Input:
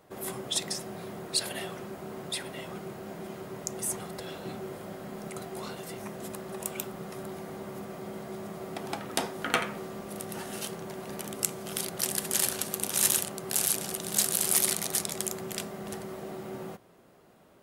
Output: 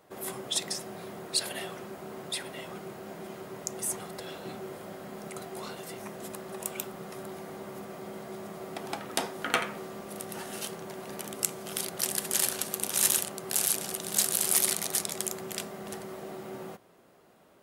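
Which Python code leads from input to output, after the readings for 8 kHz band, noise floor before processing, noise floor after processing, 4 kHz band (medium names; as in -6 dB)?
0.0 dB, -58 dBFS, -60 dBFS, 0.0 dB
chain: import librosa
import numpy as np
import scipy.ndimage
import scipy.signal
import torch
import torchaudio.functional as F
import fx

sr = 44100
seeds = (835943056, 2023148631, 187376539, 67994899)

y = fx.low_shelf(x, sr, hz=190.0, db=-6.5)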